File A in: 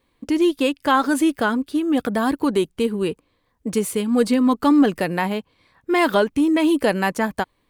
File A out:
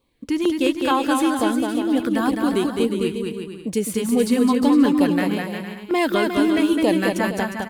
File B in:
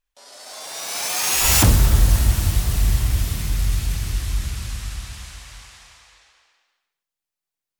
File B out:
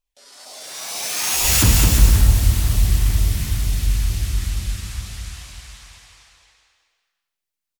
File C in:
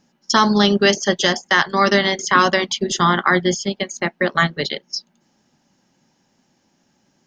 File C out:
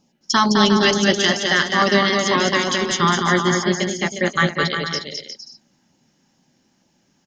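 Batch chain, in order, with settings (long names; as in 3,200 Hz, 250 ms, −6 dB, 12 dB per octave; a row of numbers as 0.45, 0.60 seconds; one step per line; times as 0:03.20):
auto-filter notch saw down 2.2 Hz 390–1,900 Hz
bouncing-ball delay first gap 210 ms, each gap 0.7×, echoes 5
level −1 dB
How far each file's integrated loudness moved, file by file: 0.0, +1.5, −0.5 LU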